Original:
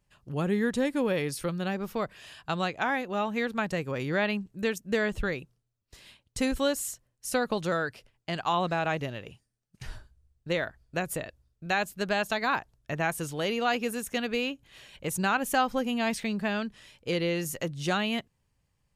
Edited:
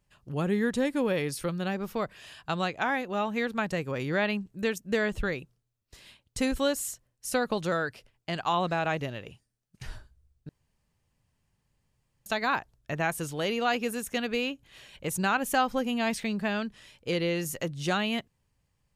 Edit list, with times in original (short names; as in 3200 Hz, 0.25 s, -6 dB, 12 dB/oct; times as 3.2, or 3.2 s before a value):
10.49–12.26 room tone